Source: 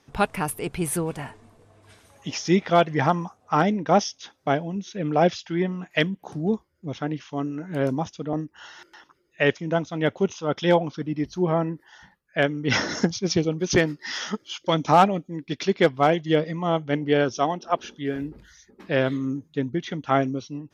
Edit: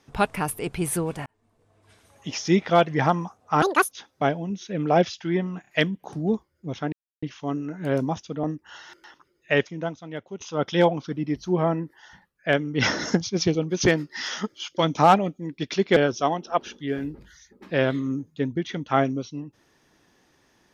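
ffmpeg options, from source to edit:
-filter_complex "[0:a]asplit=9[a][b][c][d][e][f][g][h][i];[a]atrim=end=1.26,asetpts=PTS-STARTPTS,afade=t=out:st=1.256:d=0.004:c=hsin[j];[b]atrim=start=1.26:end=3.624,asetpts=PTS-STARTPTS,afade=t=in:d=1.15[k];[c]atrim=start=3.62:end=4.17,asetpts=PTS-STARTPTS,asetrate=82467,aresample=44100[l];[d]atrim=start=4.166:end=5.902[m];[e]atrim=start=5.868:end=5.902[n];[f]atrim=start=5.868:end=7.12,asetpts=PTS-STARTPTS,afade=t=out:st=1.248:d=0.004:c=hsin,apad=pad_dur=0.3[o];[g]atrim=start=7.12:end=10.3,asetpts=PTS-STARTPTS,afade=t=in:d=0.004:c=hsin,afade=t=out:st=2.3:d=0.88:c=qua:silence=0.199526[p];[h]atrim=start=10.3:end=15.862,asetpts=PTS-STARTPTS,afade=t=in:d=0.004:c=hsin:silence=0.199526[q];[i]atrim=start=17.138[r];[j][k]concat=n=2:v=0:a=1[s];[s][l]acrossfade=d=0.004:c1=hsin:c2=hsin[t];[t][m]acrossfade=d=0.004:c1=hsin:c2=hsin[u];[u][n]acrossfade=d=0.004:c1=hsin:c2=hsin[v];[o][p][q]concat=n=3:v=0:a=1[w];[v][w]acrossfade=d=0.004:c1=hsin:c2=hsin[x];[x][r]acrossfade=d=0.004:c1=hsin:c2=hsin"

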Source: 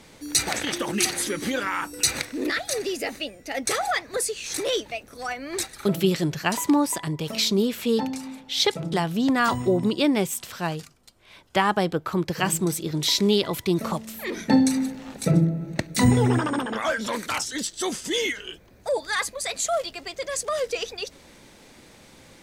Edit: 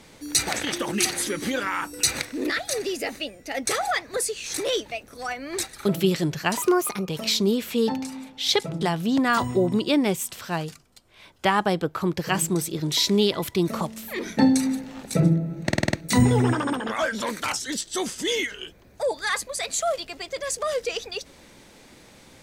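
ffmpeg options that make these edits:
-filter_complex "[0:a]asplit=8[a][b][c][d][e][f][g][h];[a]atrim=end=6.624[i];[b]atrim=start=6.62:end=7.19,asetpts=PTS-STARTPTS,asetrate=54684,aresample=44100[j];[c]atrim=start=7.186:end=15.832[k];[d]atrim=start=15.778:end=15.832[l];[e]atrim=start=15.778:end=15.832[m];[f]atrim=start=15.778:end=15.832[n];[g]atrim=start=15.778:end=15.832[o];[h]atrim=start=15.778[p];[i][j]acrossfade=d=0.004:c1=hsin:c2=hsin[q];[q][k]acrossfade=d=0.004:c1=hsin:c2=hsin[r];[r][l]acrossfade=d=0.004:c1=hsin:c2=hsin[s];[s][m]acrossfade=d=0.004:c1=hsin:c2=hsin[t];[t][n]acrossfade=d=0.004:c1=hsin:c2=hsin[u];[u][o]acrossfade=d=0.004:c1=hsin:c2=hsin[v];[v][p]acrossfade=d=0.004:c1=hsin:c2=hsin"

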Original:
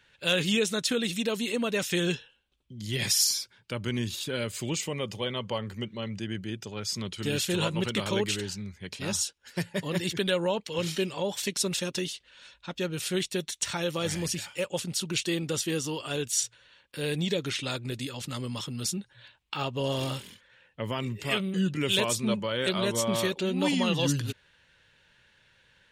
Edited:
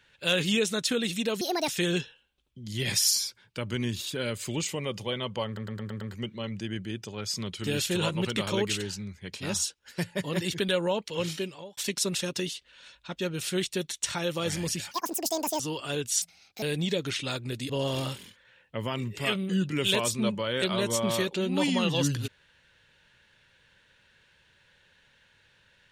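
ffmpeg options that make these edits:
-filter_complex "[0:a]asplit=14[a][b][c][d][e][f][g][h][i][j][k][l][m][n];[a]atrim=end=1.414[o];[b]atrim=start=1.41:end=1.82,asetpts=PTS-STARTPTS,asetrate=66591,aresample=44100,atrim=end_sample=11974,asetpts=PTS-STARTPTS[p];[c]atrim=start=1.816:end=5.712[q];[d]atrim=start=5.598:end=5.712[r];[e]atrim=start=5.598:end=5.712[s];[f]atrim=start=5.598:end=5.712[t];[g]atrim=start=5.598:end=5.712[u];[h]atrim=start=5.598:end=11.36,asetpts=PTS-STARTPTS,afade=t=out:st=5.192:d=0.57[v];[i]atrim=start=11.36:end=14.504,asetpts=PTS-STARTPTS,afade=t=in:d=0.004:c=hsin[w];[j]atrim=start=14.5:end=15.81,asetpts=PTS-STARTPTS,asetrate=84231,aresample=44100[x];[k]atrim=start=15.806:end=16.434[y];[l]atrim=start=16.43:end=17.02,asetpts=PTS-STARTPTS,asetrate=63945,aresample=44100,atrim=end_sample=17944,asetpts=PTS-STARTPTS[z];[m]atrim=start=17.016:end=18.092[aa];[n]atrim=start=19.738[ab];[o][p]acrossfade=d=0.004:c1=hsin:c2=hsin[ac];[ac][q]acrossfade=d=0.004:c1=hsin:c2=hsin[ad];[ad][r]acrossfade=d=0.004:c1=hsin:c2=hsin[ae];[ae][s]acrossfade=d=0.004:c1=hsin:c2=hsin[af];[af][t]acrossfade=d=0.004:c1=hsin:c2=hsin[ag];[ag][u]acrossfade=d=0.004:c1=hsin:c2=hsin[ah];[v][w]concat=n=2:v=0:a=1[ai];[ah][ai]acrossfade=d=0.004:c1=hsin:c2=hsin[aj];[aj][x]acrossfade=d=0.004:c1=hsin:c2=hsin[ak];[ak][y]acrossfade=d=0.004:c1=hsin:c2=hsin[al];[al][z]acrossfade=d=0.004:c1=hsin:c2=hsin[am];[am][aa]acrossfade=d=0.004:c1=hsin:c2=hsin[an];[an][ab]acrossfade=d=0.004:c1=hsin:c2=hsin"

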